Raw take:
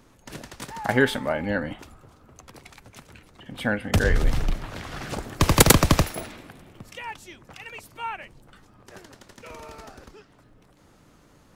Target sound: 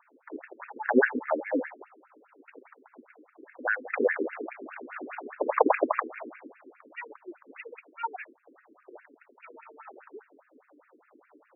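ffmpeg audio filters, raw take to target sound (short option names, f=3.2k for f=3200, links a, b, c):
-filter_complex "[0:a]asettb=1/sr,asplit=3[a][b][c];[a]atrim=end=9.004[d];[b]atrim=start=9:end=9.8,asetpts=PTS-STARTPTS,afade=t=in:d=0.004:c=qsin,afade=t=out:st=0.796:d=0.004:c=qsin,equalizer=f=440:w=0.41:g=-8.5[e];[c]atrim=start=9.796[f];[d][e]acrossfade=d=0.004:c1=hsin:c2=qsin[g];[g][f]acrossfade=d=0.004:c1=qsin:c2=hsin,asplit=2[h][i];[i]acrusher=samples=19:mix=1:aa=0.000001,volume=-12dB[j];[h][j]amix=inputs=2:normalize=0,lowshelf=f=170:g=7.5,afftfilt=real='re*between(b*sr/1024,320*pow(2000/320,0.5+0.5*sin(2*PI*4.9*pts/sr))/1.41,320*pow(2000/320,0.5+0.5*sin(2*PI*4.9*pts/sr))*1.41)':imag='im*between(b*sr/1024,320*pow(2000/320,0.5+0.5*sin(2*PI*4.9*pts/sr))/1.41,320*pow(2000/320,0.5+0.5*sin(2*PI*4.9*pts/sr))*1.41)':win_size=1024:overlap=0.75,volume=2.5dB"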